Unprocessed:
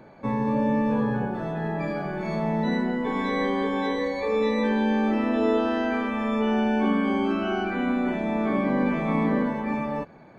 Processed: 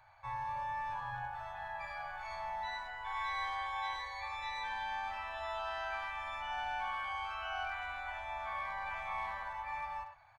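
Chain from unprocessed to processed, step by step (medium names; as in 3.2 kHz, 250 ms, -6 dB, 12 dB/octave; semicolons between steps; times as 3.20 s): elliptic band-stop 100–790 Hz, stop band 40 dB; speakerphone echo 100 ms, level -8 dB; trim -7 dB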